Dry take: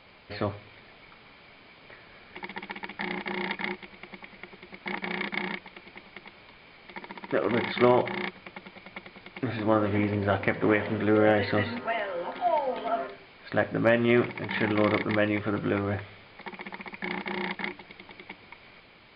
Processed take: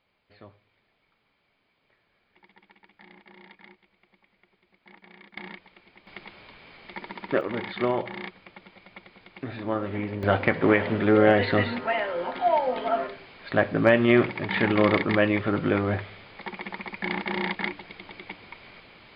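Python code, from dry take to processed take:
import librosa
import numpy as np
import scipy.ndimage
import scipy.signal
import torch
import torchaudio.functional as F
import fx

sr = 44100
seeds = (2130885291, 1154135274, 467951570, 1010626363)

y = fx.gain(x, sr, db=fx.steps((0.0, -19.0), (5.37, -8.0), (6.07, 2.5), (7.41, -4.5), (10.23, 3.5)))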